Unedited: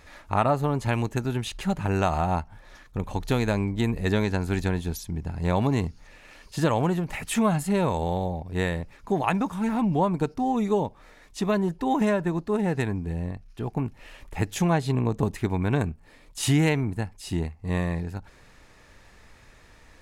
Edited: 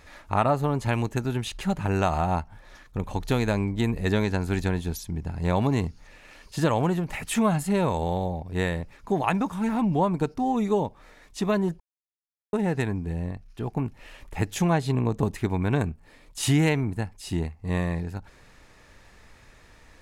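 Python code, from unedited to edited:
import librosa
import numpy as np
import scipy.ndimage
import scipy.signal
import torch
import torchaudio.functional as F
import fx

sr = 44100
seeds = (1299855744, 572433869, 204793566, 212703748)

y = fx.edit(x, sr, fx.silence(start_s=11.8, length_s=0.73), tone=tone)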